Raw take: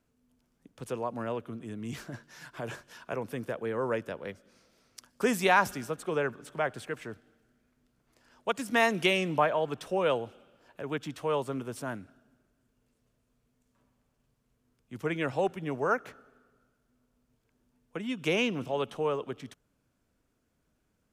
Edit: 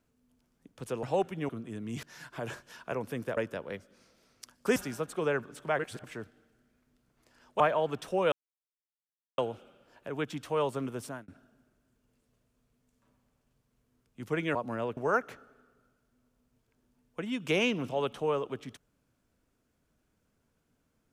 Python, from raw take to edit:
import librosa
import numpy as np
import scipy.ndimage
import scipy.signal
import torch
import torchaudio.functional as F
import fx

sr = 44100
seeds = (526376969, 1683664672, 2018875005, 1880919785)

y = fx.edit(x, sr, fx.swap(start_s=1.03, length_s=0.42, other_s=15.28, other_length_s=0.46),
    fx.cut(start_s=1.99, length_s=0.25),
    fx.cut(start_s=3.58, length_s=0.34),
    fx.cut(start_s=5.31, length_s=0.35),
    fx.reverse_span(start_s=6.69, length_s=0.25),
    fx.cut(start_s=8.5, length_s=0.89),
    fx.insert_silence(at_s=10.11, length_s=1.06),
    fx.fade_out_span(start_s=11.76, length_s=0.25), tone=tone)